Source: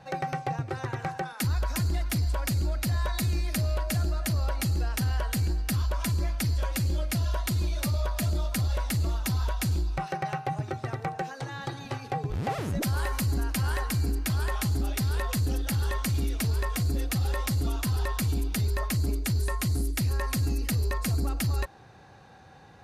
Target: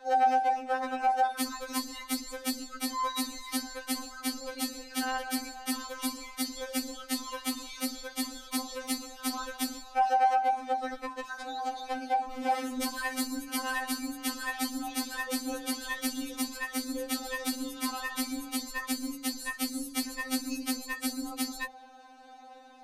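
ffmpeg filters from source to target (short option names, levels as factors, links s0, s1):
-filter_complex "[0:a]asplit=3[s0][s1][s2];[s0]afade=t=out:st=10.93:d=0.02[s3];[s1]afreqshift=-56,afade=t=in:st=10.93:d=0.02,afade=t=out:st=11.94:d=0.02[s4];[s2]afade=t=in:st=11.94:d=0.02[s5];[s3][s4][s5]amix=inputs=3:normalize=0,bandreject=f=60:t=h:w=6,bandreject=f=120:t=h:w=6,bandreject=f=180:t=h:w=6,bandreject=f=240:t=h:w=6,afftfilt=real='re*3.46*eq(mod(b,12),0)':imag='im*3.46*eq(mod(b,12),0)':win_size=2048:overlap=0.75,volume=1.33"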